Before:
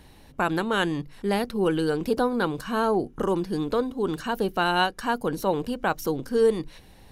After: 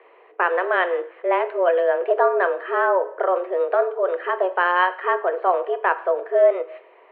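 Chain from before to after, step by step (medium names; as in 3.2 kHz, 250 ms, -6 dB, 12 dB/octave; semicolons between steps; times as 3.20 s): careless resampling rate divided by 4×, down filtered, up hold; mistuned SSB +180 Hz 220–2400 Hz; two-slope reverb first 0.54 s, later 1.5 s, DRR 10 dB; trim +5 dB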